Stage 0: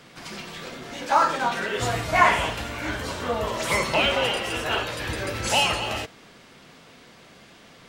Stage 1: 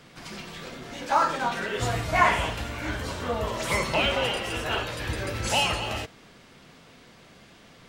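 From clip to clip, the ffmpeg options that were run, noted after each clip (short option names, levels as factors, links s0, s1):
-af "lowshelf=f=140:g=6.5,volume=0.708"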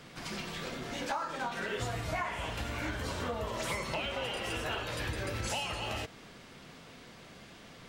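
-af "acompressor=threshold=0.0251:ratio=10"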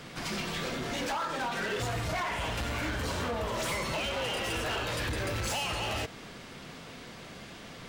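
-af "asoftclip=type=hard:threshold=0.0168,volume=2"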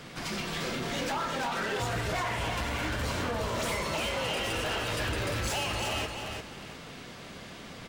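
-af "aecho=1:1:350|700|1050:0.531|0.127|0.0306"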